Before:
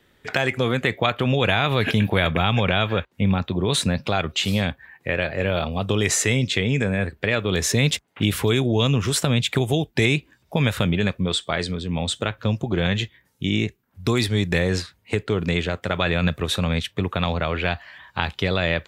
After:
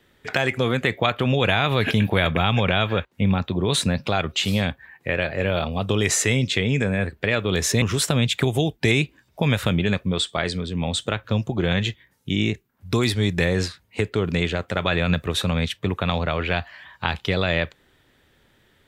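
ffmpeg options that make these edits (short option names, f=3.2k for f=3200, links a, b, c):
-filter_complex "[0:a]asplit=2[a][b];[a]atrim=end=7.822[c];[b]atrim=start=8.958[d];[c][d]acrossfade=d=0.004:c1=hsin:c2=hsin"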